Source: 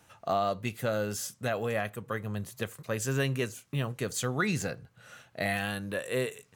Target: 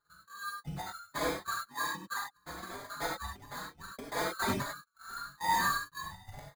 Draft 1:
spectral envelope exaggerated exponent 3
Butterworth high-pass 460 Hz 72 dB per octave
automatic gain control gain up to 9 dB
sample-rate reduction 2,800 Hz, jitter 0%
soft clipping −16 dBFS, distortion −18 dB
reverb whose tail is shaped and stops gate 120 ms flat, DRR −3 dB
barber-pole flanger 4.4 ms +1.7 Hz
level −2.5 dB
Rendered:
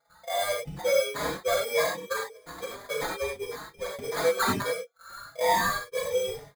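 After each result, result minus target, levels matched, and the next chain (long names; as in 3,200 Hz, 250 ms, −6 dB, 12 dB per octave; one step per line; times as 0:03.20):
500 Hz band +8.5 dB; soft clipping: distortion −10 dB
spectral envelope exaggerated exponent 3
Butterworth high-pass 1,200 Hz 72 dB per octave
automatic gain control gain up to 9 dB
sample-rate reduction 2,800 Hz, jitter 0%
soft clipping −16 dBFS, distortion −18 dB
reverb whose tail is shaped and stops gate 120 ms flat, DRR −3 dB
barber-pole flanger 4.4 ms +1.7 Hz
level −2.5 dB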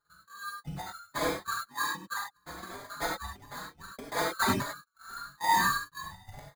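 soft clipping: distortion −10 dB
spectral envelope exaggerated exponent 3
Butterworth high-pass 1,200 Hz 72 dB per octave
automatic gain control gain up to 9 dB
sample-rate reduction 2,800 Hz, jitter 0%
soft clipping −25.5 dBFS, distortion −8 dB
reverb whose tail is shaped and stops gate 120 ms flat, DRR −3 dB
barber-pole flanger 4.4 ms +1.7 Hz
level −2.5 dB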